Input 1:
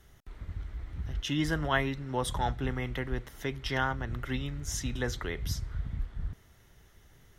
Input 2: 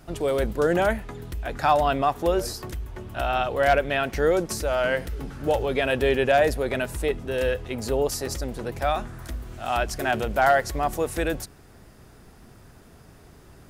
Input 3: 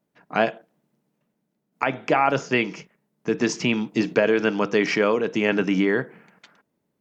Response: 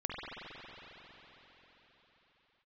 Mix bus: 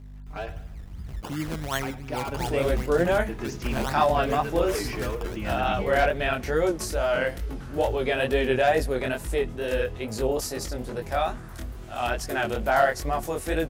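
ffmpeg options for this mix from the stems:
-filter_complex "[0:a]aeval=exprs='val(0)+0.00355*(sin(2*PI*50*n/s)+sin(2*PI*2*50*n/s)/2+sin(2*PI*3*50*n/s)/3+sin(2*PI*4*50*n/s)/4+sin(2*PI*5*50*n/s)/5)':channel_layout=same,acrusher=samples=17:mix=1:aa=0.000001:lfo=1:lforange=17:lforate=2.7,volume=-1.5dB[link_01];[1:a]flanger=delay=18.5:depth=6.2:speed=2.3,adelay=2300,volume=1.5dB[link_02];[2:a]volume=12dB,asoftclip=hard,volume=-12dB,aeval=exprs='val(0)+0.0224*(sin(2*PI*50*n/s)+sin(2*PI*2*50*n/s)/2+sin(2*PI*3*50*n/s)/3+sin(2*PI*4*50*n/s)/4+sin(2*PI*5*50*n/s)/5)':channel_layout=same,asplit=2[link_03][link_04];[link_04]adelay=4.8,afreqshift=0.46[link_05];[link_03][link_05]amix=inputs=2:normalize=1,volume=-10dB,asplit=2[link_06][link_07];[link_07]volume=-15dB,aecho=0:1:101|202|303|404|505|606:1|0.45|0.202|0.0911|0.041|0.0185[link_08];[link_01][link_02][link_06][link_08]amix=inputs=4:normalize=0"

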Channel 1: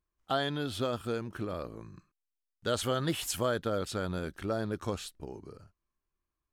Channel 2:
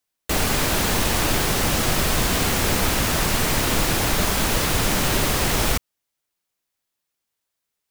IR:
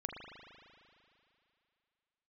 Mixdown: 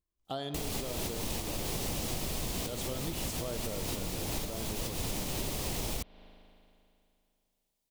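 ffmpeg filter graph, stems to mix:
-filter_complex "[0:a]volume=-6dB,asplit=3[link_01][link_02][link_03];[link_02]volume=-3.5dB[link_04];[1:a]adelay=250,volume=-3dB,asplit=2[link_05][link_06];[link_06]volume=-20.5dB[link_07];[link_03]apad=whole_len=359793[link_08];[link_05][link_08]sidechaincompress=threshold=-44dB:ratio=8:attack=16:release=187[link_09];[2:a]atrim=start_sample=2205[link_10];[link_04][link_07]amix=inputs=2:normalize=0[link_11];[link_11][link_10]afir=irnorm=-1:irlink=0[link_12];[link_01][link_09][link_12]amix=inputs=3:normalize=0,equalizer=frequency=1500:width_type=o:width=1:gain=-11.5,acompressor=threshold=-32dB:ratio=6"

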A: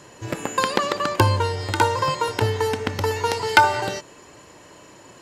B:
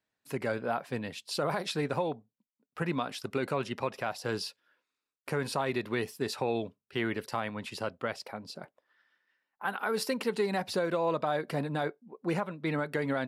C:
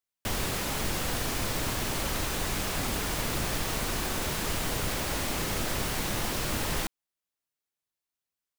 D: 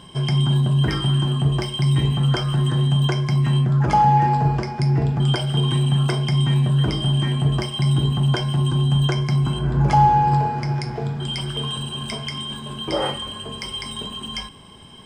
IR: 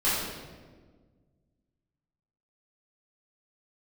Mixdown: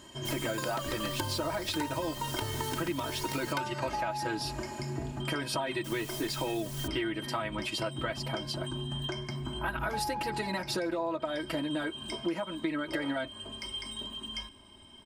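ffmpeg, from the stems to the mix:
-filter_complex "[0:a]highshelf=frequency=6200:gain=8.5,dynaudnorm=framelen=120:gausssize=9:maxgain=11dB,volume=-11.5dB[link_01];[1:a]aecho=1:1:6.2:0.92,volume=3dB[link_02];[2:a]bass=frequency=250:gain=1,treble=frequency=4000:gain=12,asplit=2[link_03][link_04];[link_04]adelay=6.3,afreqshift=-0.63[link_05];[link_03][link_05]amix=inputs=2:normalize=1,volume=-14.5dB,asplit=3[link_06][link_07][link_08];[link_06]atrim=end=3.53,asetpts=PTS-STARTPTS,afade=type=out:start_time=3.526:duration=0.004:curve=hsin[link_09];[link_07]atrim=start=3.53:end=5.84,asetpts=PTS-STARTPTS,volume=0[link_10];[link_08]atrim=start=5.84,asetpts=PTS-STARTPTS,afade=type=in:duration=0.004:curve=hsin[link_11];[link_09][link_10][link_11]concat=n=3:v=0:a=1[link_12];[3:a]volume=-12dB[link_13];[link_01][link_02][link_12][link_13]amix=inputs=4:normalize=0,aecho=1:1:3.2:0.72,acompressor=threshold=-30dB:ratio=6"

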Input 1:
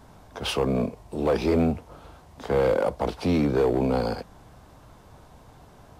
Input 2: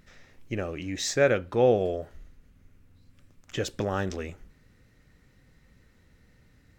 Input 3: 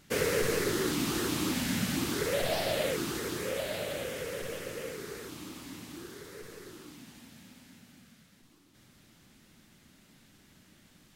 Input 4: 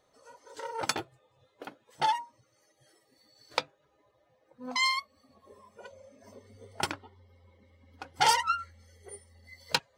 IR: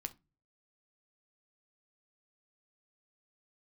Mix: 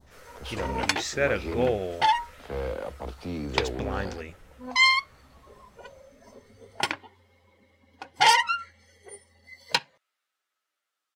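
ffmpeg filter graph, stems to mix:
-filter_complex "[0:a]equalizer=frequency=67:width_type=o:width=0.32:gain=13,volume=-11.5dB[link_01];[1:a]volume=-5dB[link_02];[2:a]highpass=frequency=500:width=0.5412,highpass=frequency=500:width=1.3066,equalizer=frequency=1300:width=6:gain=12.5,asplit=2[link_03][link_04];[link_04]adelay=9.7,afreqshift=-0.38[link_05];[link_03][link_05]amix=inputs=2:normalize=1,volume=-19.5dB[link_06];[3:a]highpass=frequency=210:poles=1,highshelf=frequency=8300:gain=-5.5,bandreject=frequency=1300:width=6.6,volume=1dB,asplit=2[link_07][link_08];[link_08]volume=-7dB[link_09];[4:a]atrim=start_sample=2205[link_10];[link_09][link_10]afir=irnorm=-1:irlink=0[link_11];[link_01][link_02][link_06][link_07][link_11]amix=inputs=5:normalize=0,adynamicequalizer=threshold=0.00794:dfrequency=2200:dqfactor=0.86:tfrequency=2200:tqfactor=0.86:attack=5:release=100:ratio=0.375:range=3.5:mode=boostabove:tftype=bell"

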